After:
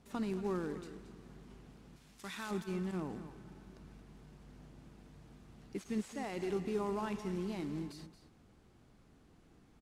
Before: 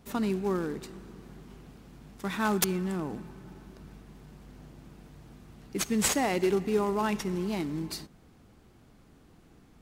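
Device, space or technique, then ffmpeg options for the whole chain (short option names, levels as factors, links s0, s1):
de-esser from a sidechain: -filter_complex "[0:a]asplit=2[s0][s1];[s1]highpass=6800,apad=whole_len=432669[s2];[s0][s2]sidechaincompress=threshold=0.00251:ratio=4:attack=1.1:release=23,lowpass=11000,asettb=1/sr,asplit=3[s3][s4][s5];[s3]atrim=end=1.964[s6];[s4]atrim=start=1.96:end=2.51,asetpts=PTS-STARTPTS,afade=t=in:d=0.004:c=qsin,afade=t=out:st=0.546:d=0.004:c=qsin,tiltshelf=f=1500:g=-7.5[s7];[s5]atrim=start=2.506[s8];[s6][s7]acrossfade=d=0.004:c1=hsin:c2=qsin[s9];[s9][s8]acrossfade=d=0.004:c1=qsin:c2=hsin,aecho=1:1:225:0.237,volume=0.473"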